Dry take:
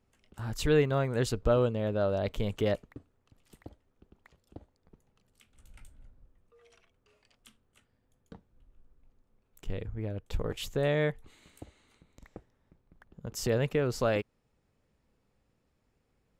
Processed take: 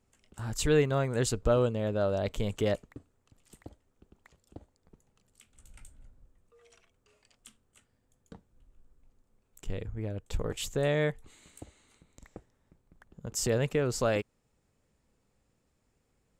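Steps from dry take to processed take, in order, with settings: bell 7700 Hz +9 dB 0.68 oct

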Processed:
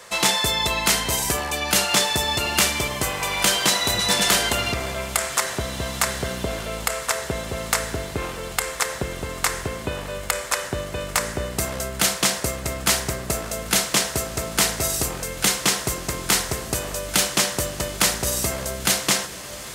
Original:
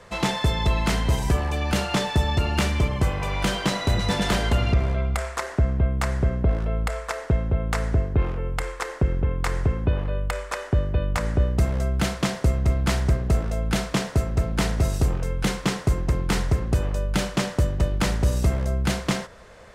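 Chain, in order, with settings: RIAA curve recording; diffused feedback echo 1.935 s, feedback 60%, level -14 dB; gain +3.5 dB

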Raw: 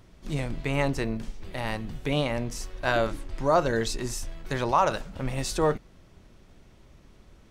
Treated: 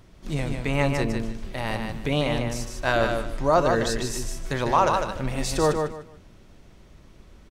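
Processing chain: feedback echo 0.151 s, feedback 24%, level -5 dB; gain +2 dB

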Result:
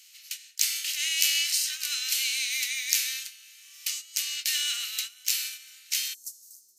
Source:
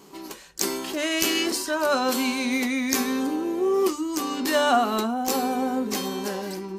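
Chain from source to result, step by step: per-bin compression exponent 0.6; inverse Chebyshev high-pass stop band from 940 Hz, stop band 50 dB, from 6.13 s stop band from 2600 Hz; gate -33 dBFS, range -12 dB

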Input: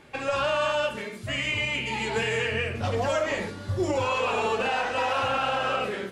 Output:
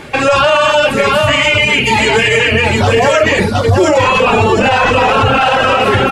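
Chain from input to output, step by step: reverb removal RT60 0.93 s; 4.05–5.41 tone controls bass +12 dB, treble -3 dB; on a send: echo 0.714 s -6 dB; on the sum: maximiser +22.5 dB; gain -1 dB

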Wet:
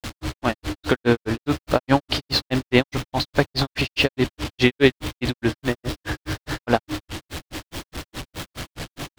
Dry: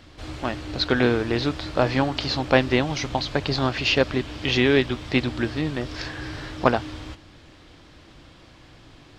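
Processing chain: zero-crossing step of -30 dBFS; grains 0.132 s, grains 4.8/s, pitch spread up and down by 0 st; gain +5.5 dB

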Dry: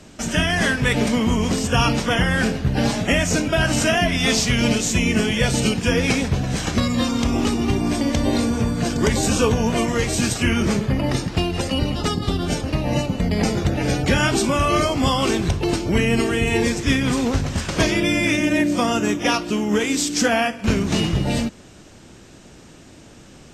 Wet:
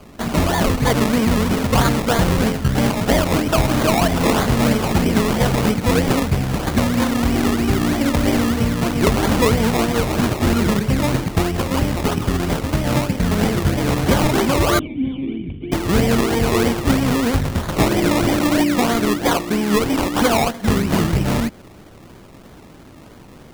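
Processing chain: decimation with a swept rate 23×, swing 60% 3.1 Hz; 14.79–15.72 vocal tract filter i; gain +2.5 dB

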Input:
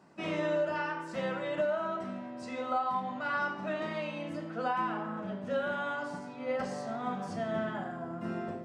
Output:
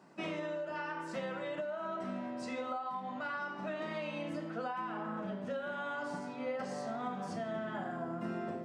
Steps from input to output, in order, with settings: compressor, threshold -35 dBFS, peak gain reduction 8.5 dB; HPF 130 Hz; vocal rider 0.5 s

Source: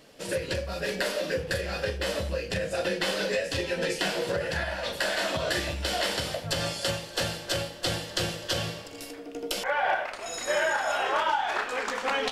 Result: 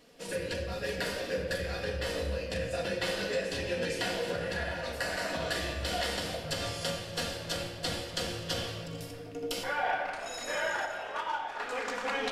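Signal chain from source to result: 4.81–5.33 bell 3400 Hz -12 dB 0.26 oct; 10.85–11.6 gate -24 dBFS, range -9 dB; shoebox room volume 3500 m³, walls mixed, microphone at 1.8 m; gain -6.5 dB

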